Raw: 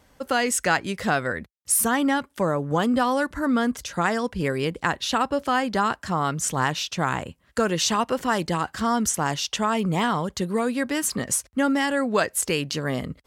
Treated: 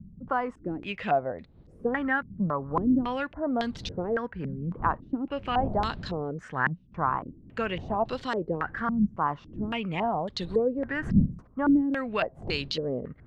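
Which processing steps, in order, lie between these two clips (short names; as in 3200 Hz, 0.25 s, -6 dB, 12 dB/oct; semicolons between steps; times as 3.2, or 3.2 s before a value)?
wind noise 160 Hz -33 dBFS; wow and flutter 60 cents; stepped low-pass 3.6 Hz 200–4000 Hz; gain -8.5 dB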